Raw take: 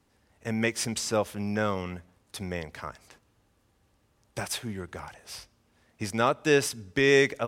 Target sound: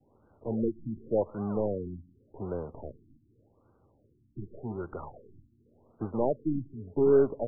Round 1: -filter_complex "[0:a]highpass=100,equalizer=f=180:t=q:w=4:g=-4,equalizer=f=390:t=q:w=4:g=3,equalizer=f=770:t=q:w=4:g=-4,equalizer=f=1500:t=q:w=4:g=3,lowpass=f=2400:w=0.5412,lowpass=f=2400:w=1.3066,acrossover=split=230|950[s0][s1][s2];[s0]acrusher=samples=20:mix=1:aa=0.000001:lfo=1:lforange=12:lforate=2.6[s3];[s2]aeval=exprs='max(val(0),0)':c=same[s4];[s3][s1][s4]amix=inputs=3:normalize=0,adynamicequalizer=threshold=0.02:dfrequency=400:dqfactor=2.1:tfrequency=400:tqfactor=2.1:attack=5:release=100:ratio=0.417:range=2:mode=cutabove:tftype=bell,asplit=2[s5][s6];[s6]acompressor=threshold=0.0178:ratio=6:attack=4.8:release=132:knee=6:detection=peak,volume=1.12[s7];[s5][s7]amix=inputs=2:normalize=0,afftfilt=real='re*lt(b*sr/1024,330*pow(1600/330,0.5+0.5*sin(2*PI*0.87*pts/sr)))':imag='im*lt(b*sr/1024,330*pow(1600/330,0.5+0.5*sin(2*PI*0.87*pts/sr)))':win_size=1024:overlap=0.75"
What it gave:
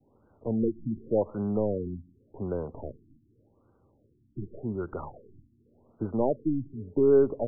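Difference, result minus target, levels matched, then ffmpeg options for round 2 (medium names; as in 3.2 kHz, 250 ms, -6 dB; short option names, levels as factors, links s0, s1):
compression: peak gain reduction -9.5 dB; decimation with a swept rate: distortion -12 dB
-filter_complex "[0:a]highpass=100,equalizer=f=180:t=q:w=4:g=-4,equalizer=f=390:t=q:w=4:g=3,equalizer=f=770:t=q:w=4:g=-4,equalizer=f=1500:t=q:w=4:g=3,lowpass=f=2400:w=0.5412,lowpass=f=2400:w=1.3066,acrossover=split=230|950[s0][s1][s2];[s0]acrusher=samples=62:mix=1:aa=0.000001:lfo=1:lforange=37.2:lforate=2.6[s3];[s2]aeval=exprs='max(val(0),0)':c=same[s4];[s3][s1][s4]amix=inputs=3:normalize=0,adynamicequalizer=threshold=0.02:dfrequency=400:dqfactor=2.1:tfrequency=400:tqfactor=2.1:attack=5:release=100:ratio=0.417:range=2:mode=cutabove:tftype=bell,asplit=2[s5][s6];[s6]acompressor=threshold=0.00447:ratio=6:attack=4.8:release=132:knee=6:detection=peak,volume=1.12[s7];[s5][s7]amix=inputs=2:normalize=0,afftfilt=real='re*lt(b*sr/1024,330*pow(1600/330,0.5+0.5*sin(2*PI*0.87*pts/sr)))':imag='im*lt(b*sr/1024,330*pow(1600/330,0.5+0.5*sin(2*PI*0.87*pts/sr)))':win_size=1024:overlap=0.75"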